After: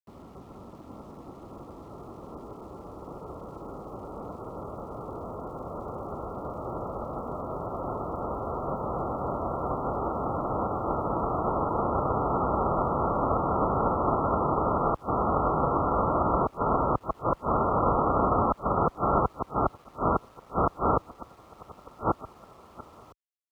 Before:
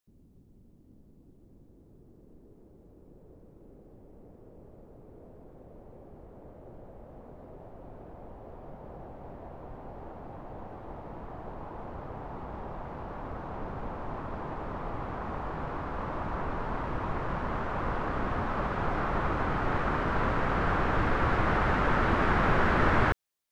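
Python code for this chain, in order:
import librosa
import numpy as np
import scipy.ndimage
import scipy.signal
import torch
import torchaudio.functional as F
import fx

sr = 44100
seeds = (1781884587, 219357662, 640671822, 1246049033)

p1 = fx.envelope_flatten(x, sr, power=0.3)
p2 = fx.rider(p1, sr, range_db=10, speed_s=0.5)
p3 = p1 + (p2 * 10.0 ** (1.0 / 20.0))
p4 = fx.gate_flip(p3, sr, shuts_db=-10.0, range_db=-31)
p5 = fx.brickwall_lowpass(p4, sr, high_hz=1400.0)
p6 = np.where(np.abs(p5) >= 10.0 ** (-58.5 / 20.0), p5, 0.0)
p7 = scipy.signal.sosfilt(scipy.signal.butter(2, 49.0, 'highpass', fs=sr, output='sos'), p6)
y = p7 * 10.0 ** (2.5 / 20.0)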